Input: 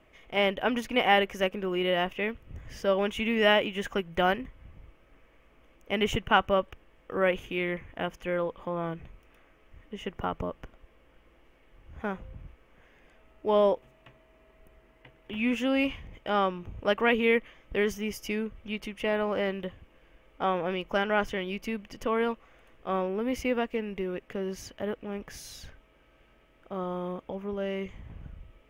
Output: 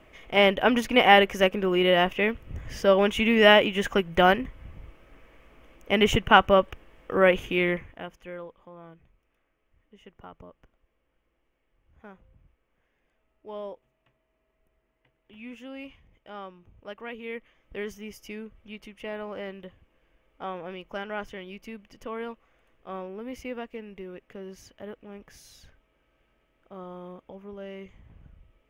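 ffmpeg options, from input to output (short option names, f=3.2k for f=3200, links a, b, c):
-af "volume=13dB,afade=t=out:st=7.69:d=0.29:silence=0.251189,afade=t=out:st=7.98:d=0.71:silence=0.375837,afade=t=in:st=17.2:d=0.58:silence=0.446684"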